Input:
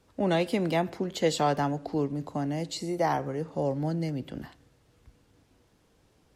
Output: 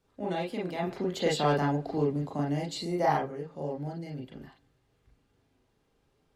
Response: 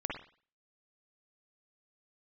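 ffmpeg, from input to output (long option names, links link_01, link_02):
-filter_complex "[0:a]asplit=3[link_01][link_02][link_03];[link_01]afade=type=out:start_time=0.81:duration=0.02[link_04];[link_02]acontrast=80,afade=type=in:start_time=0.81:duration=0.02,afade=type=out:start_time=3.22:duration=0.02[link_05];[link_03]afade=type=in:start_time=3.22:duration=0.02[link_06];[link_04][link_05][link_06]amix=inputs=3:normalize=0[link_07];[1:a]atrim=start_sample=2205,atrim=end_sample=3528,asetrate=61740,aresample=44100[link_08];[link_07][link_08]afir=irnorm=-1:irlink=0,volume=-6dB"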